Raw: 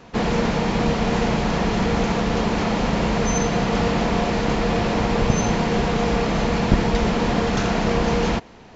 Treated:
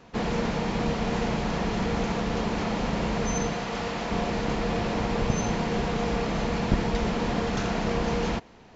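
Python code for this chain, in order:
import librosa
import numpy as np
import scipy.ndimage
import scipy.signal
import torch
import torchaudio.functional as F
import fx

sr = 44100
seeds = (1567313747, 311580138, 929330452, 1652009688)

y = fx.low_shelf(x, sr, hz=410.0, db=-8.0, at=(3.53, 4.11))
y = y * librosa.db_to_amplitude(-6.5)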